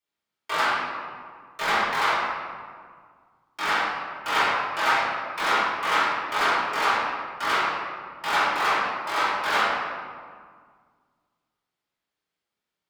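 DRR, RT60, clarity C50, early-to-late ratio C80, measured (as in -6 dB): -14.0 dB, 1.9 s, -3.0 dB, 0.0 dB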